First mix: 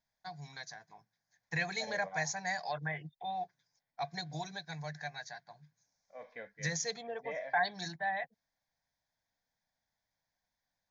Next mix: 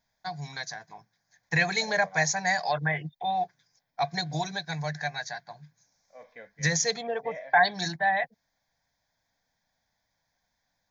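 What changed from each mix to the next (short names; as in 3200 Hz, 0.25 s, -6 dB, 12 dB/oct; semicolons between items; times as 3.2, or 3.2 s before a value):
first voice +10.0 dB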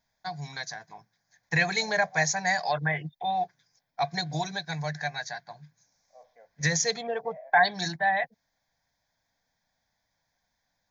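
second voice: add band-pass 730 Hz, Q 3.7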